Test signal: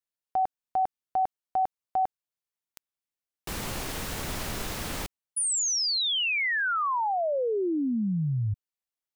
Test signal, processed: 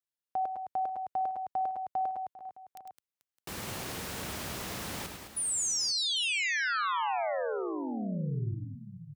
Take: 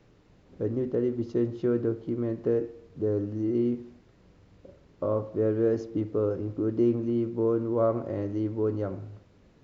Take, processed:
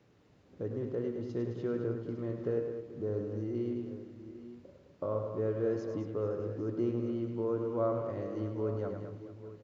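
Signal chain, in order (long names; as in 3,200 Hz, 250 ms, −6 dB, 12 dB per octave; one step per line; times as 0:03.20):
high-pass filter 81 Hz 12 dB per octave
dynamic equaliser 290 Hz, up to −5 dB, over −38 dBFS, Q 1.1
multi-tap delay 103/212/438/612/799/854 ms −7/−8.5/−17/−19.5/−17.5/−15.5 dB
level −5 dB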